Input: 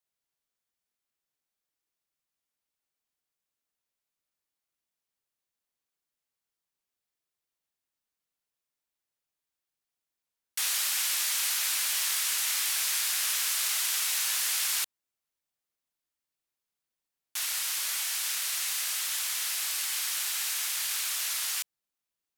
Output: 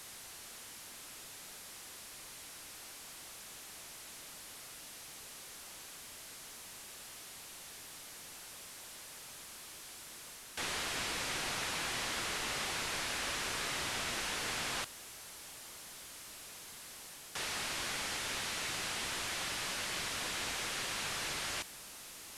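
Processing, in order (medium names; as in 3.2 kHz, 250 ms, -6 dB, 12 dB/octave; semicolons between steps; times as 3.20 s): one-bit delta coder 64 kbps, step -43.5 dBFS; reverse; upward compressor, threshold -47 dBFS; reverse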